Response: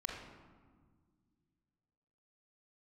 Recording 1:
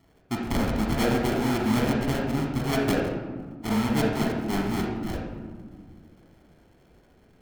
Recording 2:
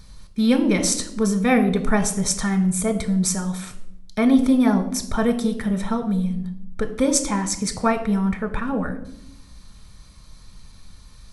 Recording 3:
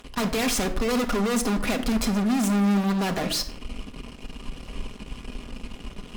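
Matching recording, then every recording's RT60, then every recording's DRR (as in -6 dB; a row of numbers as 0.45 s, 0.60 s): 1; 1.7 s, 0.75 s, no single decay rate; -1.0 dB, 7.0 dB, 3.0 dB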